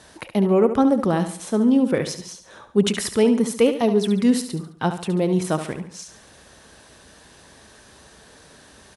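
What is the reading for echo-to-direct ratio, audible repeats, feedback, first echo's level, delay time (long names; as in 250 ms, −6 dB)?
−9.0 dB, 4, 41%, −10.0 dB, 71 ms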